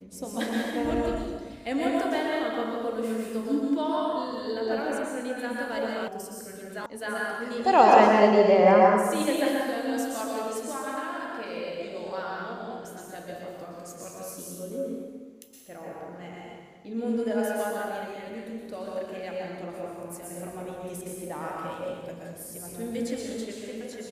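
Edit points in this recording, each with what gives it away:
6.08 sound cut off
6.86 sound cut off

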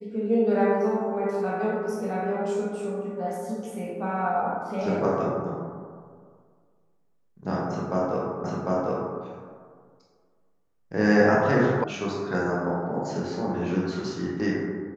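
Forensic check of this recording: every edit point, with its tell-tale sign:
8.44 repeat of the last 0.75 s
11.84 sound cut off

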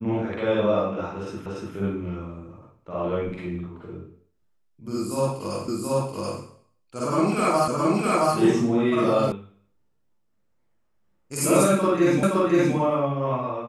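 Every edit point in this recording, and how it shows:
1.46 repeat of the last 0.29 s
5.68 repeat of the last 0.73 s
7.68 repeat of the last 0.67 s
9.32 sound cut off
12.23 repeat of the last 0.52 s

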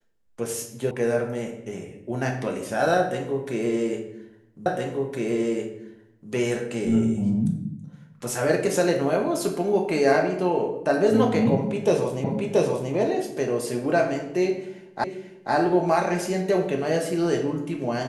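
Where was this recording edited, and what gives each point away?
0.91 sound cut off
4.66 repeat of the last 1.66 s
12.24 repeat of the last 0.68 s
15.04 repeat of the last 0.49 s

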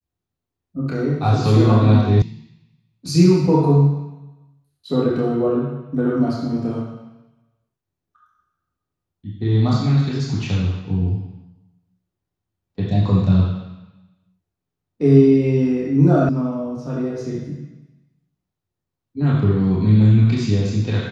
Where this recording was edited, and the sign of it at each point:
2.22 sound cut off
16.29 sound cut off

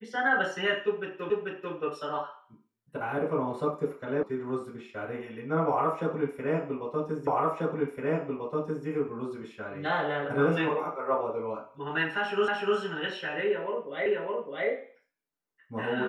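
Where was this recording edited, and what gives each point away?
1.3 repeat of the last 0.44 s
4.23 sound cut off
7.27 repeat of the last 1.59 s
12.48 repeat of the last 0.3 s
14.06 repeat of the last 0.61 s

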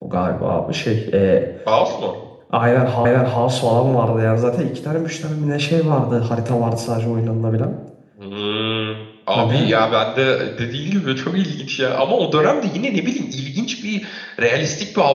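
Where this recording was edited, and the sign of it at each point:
3.05 repeat of the last 0.39 s

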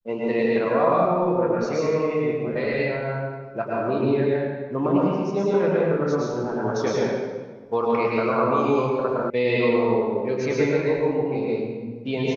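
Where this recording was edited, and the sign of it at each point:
9.3 sound cut off

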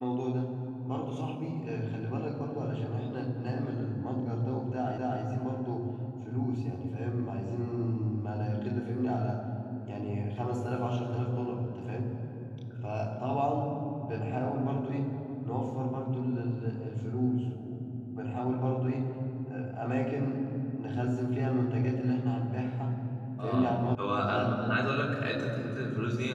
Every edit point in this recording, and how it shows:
4.98 repeat of the last 0.25 s
23.95 sound cut off

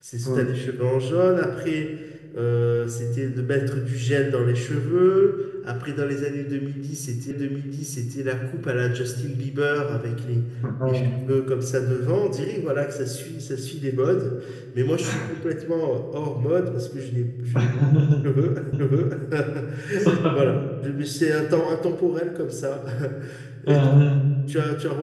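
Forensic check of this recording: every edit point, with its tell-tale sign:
7.31 repeat of the last 0.89 s
18.73 repeat of the last 0.55 s

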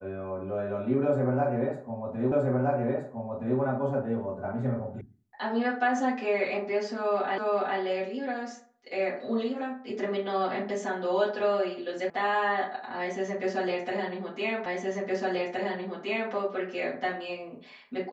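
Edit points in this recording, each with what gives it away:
2.32 repeat of the last 1.27 s
5.01 sound cut off
7.38 repeat of the last 0.41 s
12.1 sound cut off
14.66 repeat of the last 1.67 s

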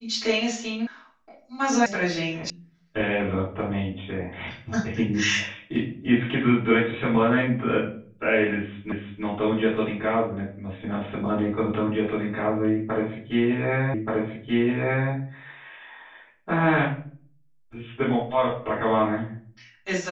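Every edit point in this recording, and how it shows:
0.87 sound cut off
1.86 sound cut off
2.5 sound cut off
8.92 repeat of the last 0.33 s
13.94 repeat of the last 1.18 s

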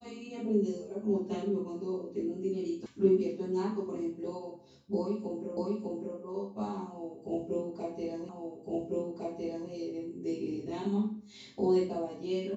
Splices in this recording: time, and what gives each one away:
2.86 sound cut off
5.57 repeat of the last 0.6 s
8.29 repeat of the last 1.41 s

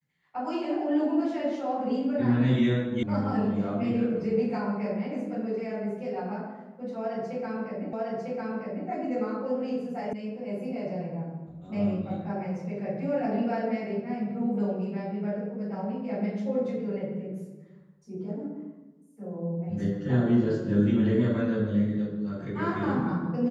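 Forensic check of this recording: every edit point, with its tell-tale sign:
3.03 sound cut off
7.93 repeat of the last 0.95 s
10.13 sound cut off

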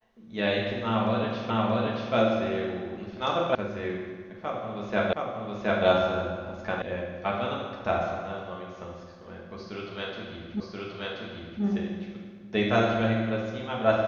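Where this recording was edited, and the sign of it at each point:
1.5 repeat of the last 0.63 s
3.55 sound cut off
5.13 repeat of the last 0.72 s
6.82 sound cut off
10.6 repeat of the last 1.03 s

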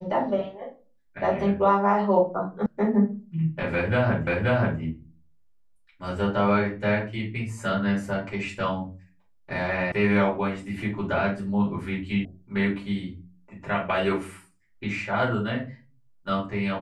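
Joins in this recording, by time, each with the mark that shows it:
2.66 sound cut off
4.27 repeat of the last 0.53 s
9.92 sound cut off
12.25 sound cut off

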